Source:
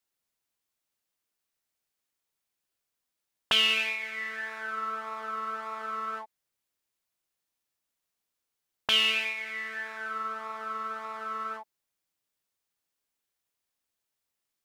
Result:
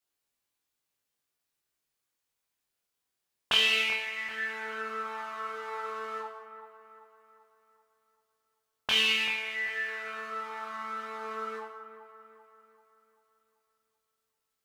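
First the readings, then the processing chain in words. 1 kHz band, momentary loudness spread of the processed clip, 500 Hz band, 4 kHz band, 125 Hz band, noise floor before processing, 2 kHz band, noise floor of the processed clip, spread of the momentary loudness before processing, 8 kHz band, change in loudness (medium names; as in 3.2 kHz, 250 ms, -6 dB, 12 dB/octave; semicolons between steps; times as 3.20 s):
-2.5 dB, 18 LU, +2.5 dB, -1.0 dB, no reading, -85 dBFS, +0.5 dB, -84 dBFS, 14 LU, +0.5 dB, -0.5 dB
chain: chorus 0.15 Hz, delay 19.5 ms, depth 4.9 ms; feedback echo behind a low-pass 388 ms, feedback 47%, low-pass 2 kHz, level -11 dB; gated-style reverb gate 290 ms falling, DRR 2 dB; trim +1.5 dB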